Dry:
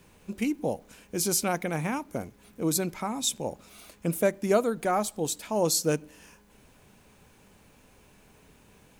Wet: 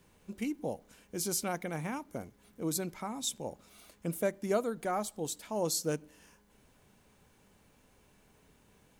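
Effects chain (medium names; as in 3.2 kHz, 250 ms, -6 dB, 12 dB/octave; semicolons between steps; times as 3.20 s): band-stop 2.5 kHz, Q 17; trim -7 dB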